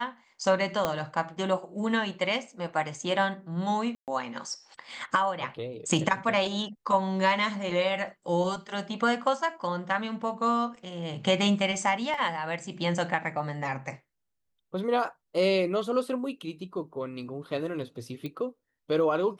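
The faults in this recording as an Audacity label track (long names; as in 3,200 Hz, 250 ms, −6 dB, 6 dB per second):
0.850000	0.850000	click −12 dBFS
3.950000	4.080000	drop-out 128 ms
12.140000	12.140000	drop-out 2.9 ms
18.260000	18.260000	click −24 dBFS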